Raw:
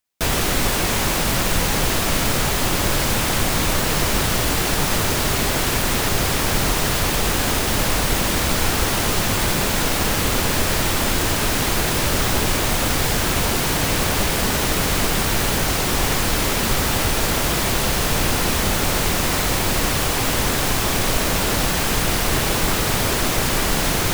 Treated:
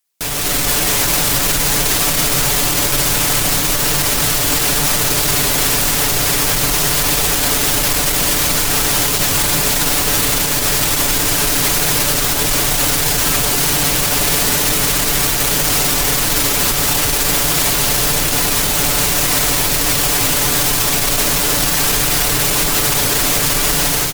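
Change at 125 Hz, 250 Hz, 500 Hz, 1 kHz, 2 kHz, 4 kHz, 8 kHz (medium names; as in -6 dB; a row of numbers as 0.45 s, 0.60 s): 0.0 dB, +0.5 dB, +1.0 dB, +1.5 dB, +3.0 dB, +5.5 dB, +8.5 dB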